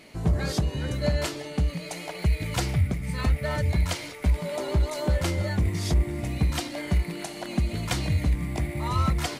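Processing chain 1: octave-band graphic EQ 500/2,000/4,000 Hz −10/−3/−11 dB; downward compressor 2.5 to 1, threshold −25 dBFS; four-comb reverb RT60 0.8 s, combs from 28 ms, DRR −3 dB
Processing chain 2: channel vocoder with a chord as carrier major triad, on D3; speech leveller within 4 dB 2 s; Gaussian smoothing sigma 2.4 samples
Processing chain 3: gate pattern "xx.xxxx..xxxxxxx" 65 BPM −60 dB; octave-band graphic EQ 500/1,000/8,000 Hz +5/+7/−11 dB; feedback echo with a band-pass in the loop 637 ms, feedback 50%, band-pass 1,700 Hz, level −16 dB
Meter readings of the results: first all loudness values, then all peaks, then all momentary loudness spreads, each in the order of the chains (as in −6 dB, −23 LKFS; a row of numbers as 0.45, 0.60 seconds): −28.0, −32.0, −27.0 LKFS; −12.0, −11.0, −10.0 dBFS; 5, 4, 8 LU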